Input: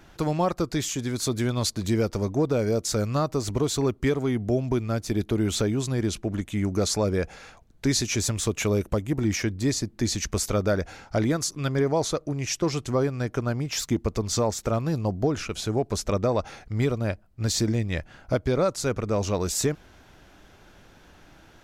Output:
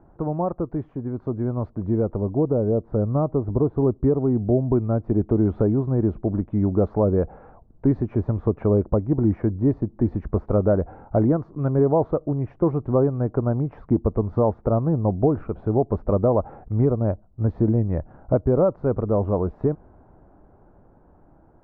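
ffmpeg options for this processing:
ffmpeg -i in.wav -filter_complex "[0:a]asettb=1/sr,asplit=3[link_01][link_02][link_03];[link_01]atrim=end=2.164[link_04];[link_02]atrim=start=2.16:end=4.73,asetpts=PTS-STARTPTS,afade=type=in:duration=0.004:curve=qsin,afade=type=out:start_time=2.566:duration=0.004:curve=qsin,lowpass=frequency=1000:poles=1[link_05];[link_03]atrim=start=4.726[link_06];[link_04][link_05]acrossfade=duration=0.004:curve1=hsin:curve2=qsin[link_07];[link_07][link_06]acrossfade=duration=0.004:curve1=qsin:curve2=hsin,lowpass=frequency=1000:width=0.5412,lowpass=frequency=1000:width=1.3066,dynaudnorm=framelen=360:gausssize=13:maxgain=5dB" out.wav

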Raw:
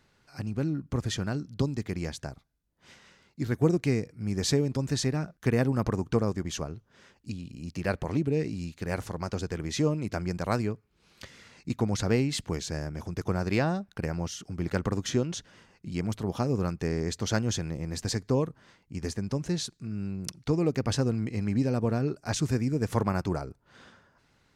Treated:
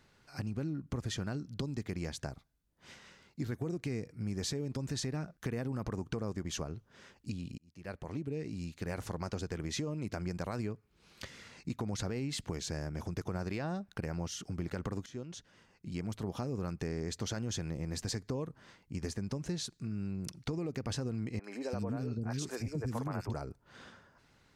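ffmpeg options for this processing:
ffmpeg -i in.wav -filter_complex "[0:a]asettb=1/sr,asplit=3[link_01][link_02][link_03];[link_01]atrim=end=21.394[link_04];[link_02]atrim=start=21.39:end=23.34,asetpts=PTS-STARTPTS,afade=type=in:duration=0.004:curve=qsin,afade=type=out:start_time=1.946:duration=0.004:curve=qsin,acrossover=split=370|2300[link_05][link_06][link_07];[link_07]adelay=50[link_08];[link_05]adelay=340[link_09];[link_09][link_06][link_08]amix=inputs=3:normalize=0,atrim=end_sample=85995[link_10];[link_03]atrim=start=23.336[link_11];[link_04][link_10]acrossfade=duration=0.004:curve1=hsin:curve2=qsin[link_12];[link_12][link_11]acrossfade=duration=0.004:curve1=qsin:curve2=hsin,asplit=3[link_13][link_14][link_15];[link_13]atrim=end=7.58,asetpts=PTS-STARTPTS,afade=type=out:start_time=7.576:duration=0.004:curve=hsin[link_16];[link_14]atrim=start=7.58:end=15.06,asetpts=PTS-STARTPTS,afade=type=in:duration=1.6,afade=type=out:start_time=7.476:duration=0.004:curve=hsin:silence=0.1[link_17];[link_15]atrim=start=15.06,asetpts=PTS-STARTPTS,afade=type=in:duration=1.49:silence=0.1[link_18];[link_16][link_17][link_18]concat=n=3:v=0:a=1,alimiter=limit=-21dB:level=0:latency=1:release=46,acompressor=threshold=-35dB:ratio=3" out.wav

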